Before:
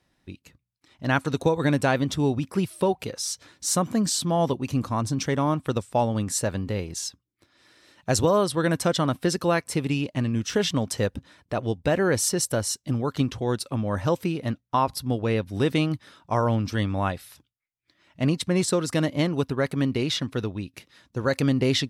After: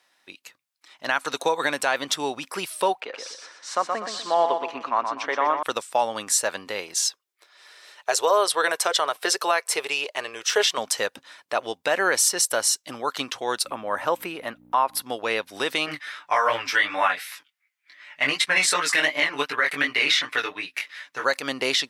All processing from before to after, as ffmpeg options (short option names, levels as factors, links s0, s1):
-filter_complex "[0:a]asettb=1/sr,asplit=3[s0][s1][s2];[s0]atrim=end=3.004[s3];[s1]atrim=start=3:end=5.63,asetpts=PTS-STARTPTS,afade=t=in:d=0.004:c=qsin,afade=t=out:st=2.626:d=0.004:c=qsin,highpass=290,lowpass=2200,aecho=1:1:123|246|369|492:0.501|0.18|0.065|0.0234,atrim=end_sample=115983[s4];[s2]atrim=start=5.626[s5];[s3][s4]acrossfade=d=0.004:c1=hsin:c2=qsin[s6];[s6][s5]acrossfade=d=0.004:c1=qsin:c2=hsin,asettb=1/sr,asplit=3[s7][s8][s9];[s7]atrim=end=7.054[s10];[s8]atrim=start=7.05:end=10.78,asetpts=PTS-STARTPTS,afade=t=in:d=0.004:c=qsin,afade=t=out:st=3.726:d=0.004:c=qsin,lowshelf=f=330:t=q:w=3:g=-9,bandreject=f=520:w=9.5[s11];[s9]atrim=start=10.776[s12];[s10][s11]acrossfade=d=0.004:c1=hsin:c2=qsin[s13];[s13][s12]acrossfade=d=0.004:c1=qsin:c2=hsin,asettb=1/sr,asplit=3[s14][s15][s16];[s14]atrim=end=13.654[s17];[s15]atrim=start=13.65:end=15.02,asetpts=PTS-STARTPTS,afade=t=in:d=0.004:c=qsin,afade=t=out:st=1.366:d=0.004:c=qsin,aeval=exprs='val(0)+0.0126*(sin(2*PI*60*n/s)+sin(2*PI*2*60*n/s)/2+sin(2*PI*3*60*n/s)/3+sin(2*PI*4*60*n/s)/4+sin(2*PI*5*60*n/s)/5)':c=same,equalizer=f=5500:w=0.8:g=-12,acompressor=mode=upward:threshold=0.0631:ratio=2.5:attack=3.2:release=140:knee=2.83:detection=peak[s18];[s16]atrim=start=15.016[s19];[s17][s18]acrossfade=d=0.004:c1=hsin:c2=qsin[s20];[s20][s19]acrossfade=d=0.004:c1=qsin:c2=hsin,asettb=1/sr,asplit=3[s21][s22][s23];[s21]atrim=end=15.864[s24];[s22]atrim=start=15.86:end=21.24,asetpts=PTS-STARTPTS,afade=t=in:d=0.004:c=qsin,afade=t=out:st=5.376:d=0.004:c=qsin,equalizer=f=2000:t=o:w=1.2:g=12.5,aecho=1:1:6.8:0.72,atrim=end_sample=237258,flanger=delay=17:depth=4.7:speed=2.7[s25];[s23]atrim=start=21.236[s26];[s24][s25]acrossfade=d=0.004:c1=hsin:c2=qsin[s27];[s27][s26]acrossfade=d=0.004:c1=qsin:c2=hsin,highpass=810,alimiter=limit=0.119:level=0:latency=1:release=112,volume=2.66"